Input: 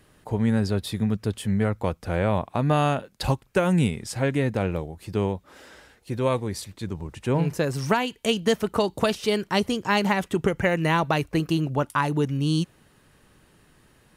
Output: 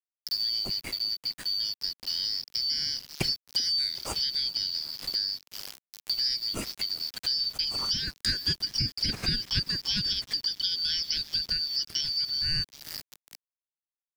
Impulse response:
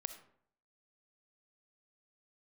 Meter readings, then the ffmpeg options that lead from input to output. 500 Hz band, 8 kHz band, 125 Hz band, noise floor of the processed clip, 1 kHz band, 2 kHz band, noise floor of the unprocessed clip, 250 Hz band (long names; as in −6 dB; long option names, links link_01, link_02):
−25.0 dB, +0.5 dB, −16.0 dB, below −85 dBFS, −21.5 dB, −11.0 dB, −59 dBFS, −19.5 dB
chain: -filter_complex "[0:a]afftfilt=real='real(if(lt(b,272),68*(eq(floor(b/68),0)*3+eq(floor(b/68),1)*2+eq(floor(b/68),2)*1+eq(floor(b/68),3)*0)+mod(b,68),b),0)':imag='imag(if(lt(b,272),68*(eq(floor(b/68),0)*3+eq(floor(b/68),1)*2+eq(floor(b/68),2)*1+eq(floor(b/68),3)*0)+mod(b,68),b),0)':win_size=2048:overlap=0.75,asplit=2[link_01][link_02];[link_02]asoftclip=type=tanh:threshold=-18.5dB,volume=-11dB[link_03];[link_01][link_03]amix=inputs=2:normalize=0,lowshelf=frequency=150:gain=4.5,asplit=6[link_04][link_05][link_06][link_07][link_08][link_09];[link_05]adelay=384,afreqshift=110,volume=-21dB[link_10];[link_06]adelay=768,afreqshift=220,volume=-24.9dB[link_11];[link_07]adelay=1152,afreqshift=330,volume=-28.8dB[link_12];[link_08]adelay=1536,afreqshift=440,volume=-32.6dB[link_13];[link_09]adelay=1920,afreqshift=550,volume=-36.5dB[link_14];[link_04][link_10][link_11][link_12][link_13][link_14]amix=inputs=6:normalize=0,dynaudnorm=framelen=990:gausssize=7:maxgain=14dB,aeval=exprs='val(0)*gte(abs(val(0)),0.0335)':channel_layout=same,acrossover=split=320[link_15][link_16];[link_16]acompressor=threshold=-33dB:ratio=3[link_17];[link_15][link_17]amix=inputs=2:normalize=0,adynamicequalizer=threshold=0.00708:dfrequency=6000:dqfactor=0.7:tfrequency=6000:tqfactor=0.7:attack=5:release=100:ratio=0.375:range=3:mode=cutabove:tftype=highshelf,volume=2.5dB"